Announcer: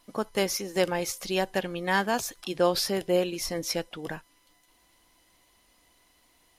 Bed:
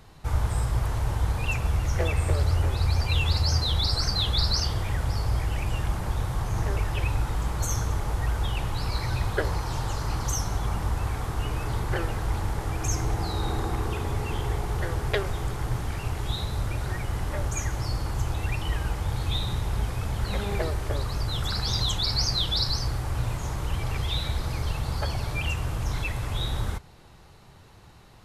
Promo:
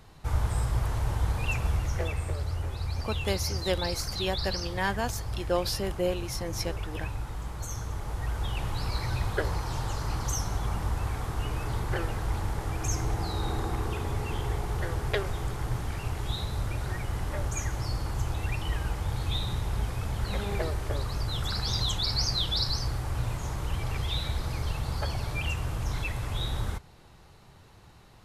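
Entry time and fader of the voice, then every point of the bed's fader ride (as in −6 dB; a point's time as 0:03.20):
2.90 s, −4.0 dB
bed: 0:01.70 −2 dB
0:02.38 −8.5 dB
0:07.74 −8.5 dB
0:08.69 −2.5 dB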